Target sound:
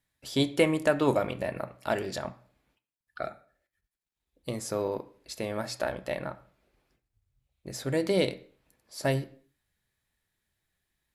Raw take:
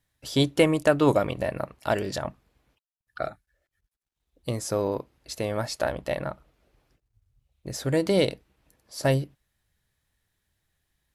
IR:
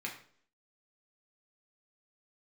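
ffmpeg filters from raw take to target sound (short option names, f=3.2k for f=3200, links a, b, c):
-filter_complex "[0:a]asplit=2[a][b];[1:a]atrim=start_sample=2205,afade=t=out:st=0.38:d=0.01,atrim=end_sample=17199[c];[b][c]afir=irnorm=-1:irlink=0,volume=-7dB[d];[a][d]amix=inputs=2:normalize=0,volume=-5.5dB"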